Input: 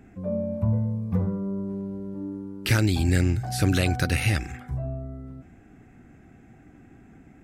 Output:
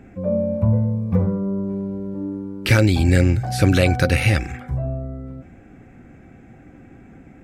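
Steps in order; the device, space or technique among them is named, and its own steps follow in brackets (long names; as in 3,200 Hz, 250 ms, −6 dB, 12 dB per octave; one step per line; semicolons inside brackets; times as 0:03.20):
inside a helmet (high-shelf EQ 5,500 Hz −6.5 dB; hollow resonant body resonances 530/2,300 Hz, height 11 dB, ringing for 90 ms)
level +6 dB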